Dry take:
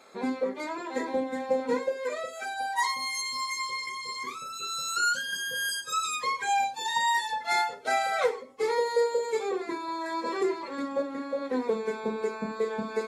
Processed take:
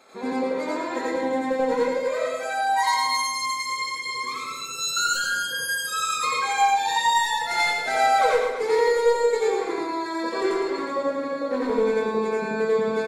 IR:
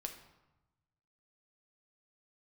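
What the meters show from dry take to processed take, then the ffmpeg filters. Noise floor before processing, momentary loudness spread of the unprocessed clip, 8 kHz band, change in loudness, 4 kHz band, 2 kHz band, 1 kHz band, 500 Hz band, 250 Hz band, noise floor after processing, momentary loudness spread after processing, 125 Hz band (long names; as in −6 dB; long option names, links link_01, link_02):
−41 dBFS, 7 LU, +5.5 dB, +6.0 dB, +5.0 dB, +5.5 dB, +6.5 dB, +6.5 dB, +5.0 dB, −32 dBFS, 7 LU, can't be measured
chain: -filter_complex "[0:a]aeval=exprs='clip(val(0),-1,0.0944)':channel_layout=same,aecho=1:1:110.8|247.8:0.501|0.282,asplit=2[link_01][link_02];[1:a]atrim=start_sample=2205,adelay=88[link_03];[link_02][link_03]afir=irnorm=-1:irlink=0,volume=5dB[link_04];[link_01][link_04]amix=inputs=2:normalize=0"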